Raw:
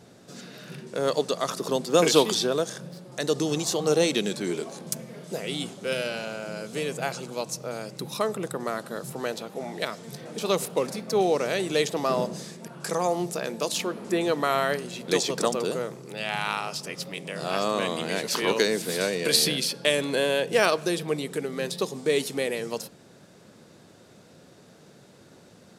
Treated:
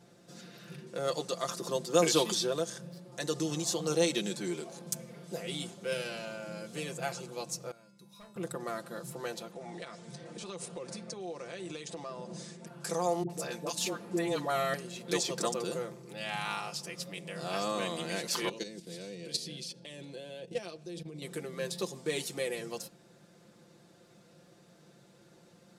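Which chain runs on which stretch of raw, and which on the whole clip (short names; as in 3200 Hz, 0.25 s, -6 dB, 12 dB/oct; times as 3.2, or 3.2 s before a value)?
7.71–8.36 resonator 200 Hz, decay 0.53 s, harmonics odd, mix 90% + hard clip -37.5 dBFS
9.51–12.67 steep low-pass 10000 Hz 72 dB/oct + compressor 5:1, threshold -31 dBFS
13.23–14.74 comb 6.9 ms, depth 31% + dispersion highs, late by 66 ms, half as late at 580 Hz
18.49–21.22 Bessel low-pass 5700 Hz + bell 1300 Hz -13 dB 1.9 oct + level quantiser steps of 12 dB
whole clip: comb 5.8 ms, depth 67%; dynamic EQ 7400 Hz, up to +4 dB, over -42 dBFS, Q 0.91; gain -9 dB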